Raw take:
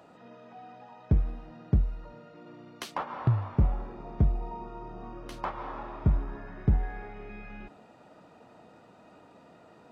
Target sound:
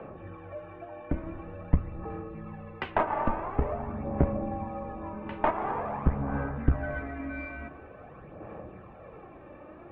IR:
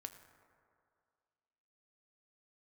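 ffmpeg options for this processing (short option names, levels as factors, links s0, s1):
-filter_complex "[0:a]highpass=f=220:t=q:w=0.5412,highpass=f=220:t=q:w=1.307,lowpass=f=2800:t=q:w=0.5176,lowpass=f=2800:t=q:w=0.7071,lowpass=f=2800:t=q:w=1.932,afreqshift=-140,aphaser=in_gain=1:out_gain=1:delay=3.4:decay=0.5:speed=0.47:type=sinusoidal,asplit=2[s0][s1];[1:a]atrim=start_sample=2205,asetrate=35721,aresample=44100,highshelf=f=4200:g=-9[s2];[s1][s2]afir=irnorm=-1:irlink=0,volume=2.99[s3];[s0][s3]amix=inputs=2:normalize=0,aeval=exprs='0.422*(cos(1*acos(clip(val(0)/0.422,-1,1)))-cos(1*PI/2))+0.168*(cos(2*acos(clip(val(0)/0.422,-1,1)))-cos(2*PI/2))':c=same,volume=0.794"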